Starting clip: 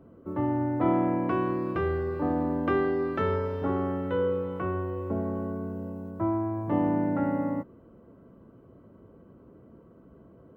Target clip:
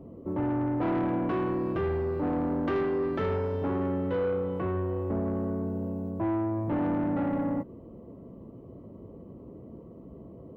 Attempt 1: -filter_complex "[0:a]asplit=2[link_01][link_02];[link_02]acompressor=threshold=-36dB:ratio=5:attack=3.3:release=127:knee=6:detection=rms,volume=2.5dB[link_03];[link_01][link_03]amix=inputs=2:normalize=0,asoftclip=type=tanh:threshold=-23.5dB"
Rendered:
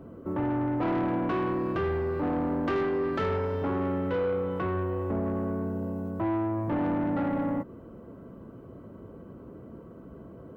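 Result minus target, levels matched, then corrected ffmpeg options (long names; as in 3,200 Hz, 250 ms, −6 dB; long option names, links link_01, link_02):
2,000 Hz band +3.0 dB
-filter_complex "[0:a]asplit=2[link_01][link_02];[link_02]acompressor=threshold=-36dB:ratio=5:attack=3.3:release=127:knee=6:detection=rms,lowpass=frequency=1500:width=0.5412,lowpass=frequency=1500:width=1.3066,volume=2.5dB[link_03];[link_01][link_03]amix=inputs=2:normalize=0,asoftclip=type=tanh:threshold=-23.5dB"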